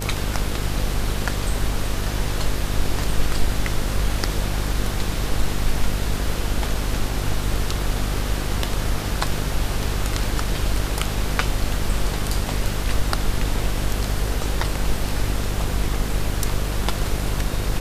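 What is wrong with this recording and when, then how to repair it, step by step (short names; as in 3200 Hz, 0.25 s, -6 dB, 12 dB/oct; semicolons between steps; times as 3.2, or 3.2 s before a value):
buzz 50 Hz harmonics 14 -26 dBFS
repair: de-hum 50 Hz, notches 14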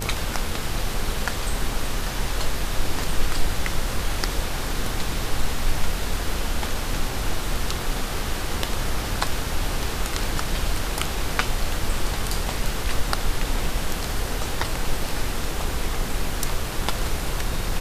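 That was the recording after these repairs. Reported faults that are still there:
none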